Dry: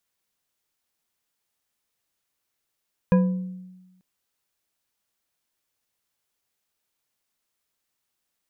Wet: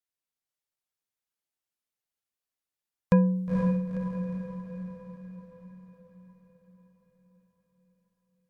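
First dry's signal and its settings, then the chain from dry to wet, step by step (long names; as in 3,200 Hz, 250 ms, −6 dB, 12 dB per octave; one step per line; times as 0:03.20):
struck glass bar, lowest mode 184 Hz, decay 1.17 s, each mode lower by 6.5 dB, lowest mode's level −13 dB
noise gate −46 dBFS, range −14 dB
feedback delay with all-pass diffusion 487 ms, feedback 55%, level −4 dB
MP3 80 kbit/s 44,100 Hz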